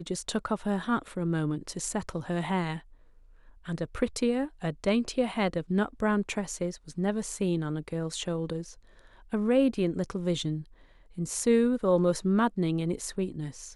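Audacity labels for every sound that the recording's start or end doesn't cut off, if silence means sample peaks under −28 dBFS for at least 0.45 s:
3.690000	8.580000	sound
9.330000	10.570000	sound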